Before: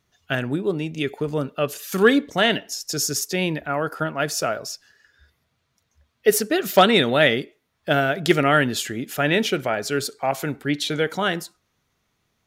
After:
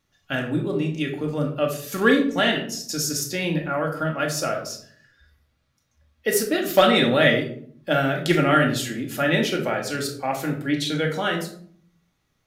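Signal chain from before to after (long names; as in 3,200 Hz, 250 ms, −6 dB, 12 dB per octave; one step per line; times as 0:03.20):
rectangular room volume 680 cubic metres, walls furnished, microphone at 2.3 metres
level −4 dB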